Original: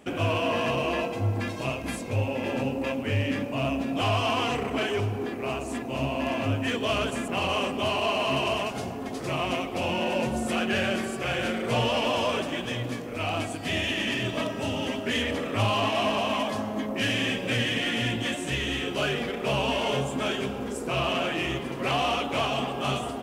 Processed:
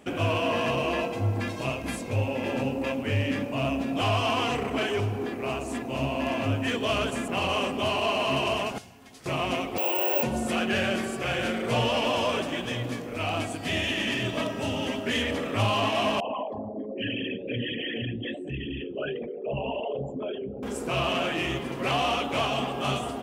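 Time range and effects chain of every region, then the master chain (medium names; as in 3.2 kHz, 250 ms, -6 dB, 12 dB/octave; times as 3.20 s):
8.78–9.26 s: amplifier tone stack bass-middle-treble 5-5-5 + band-stop 1.2 kHz, Q 21
9.78–10.23 s: steep high-pass 290 Hz 72 dB/octave + distance through air 83 m + careless resampling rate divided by 2×, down filtered, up zero stuff
16.20–20.63 s: resonances exaggerated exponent 3 + flange 1.3 Hz, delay 5 ms, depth 5.7 ms, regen -76%
whole clip: none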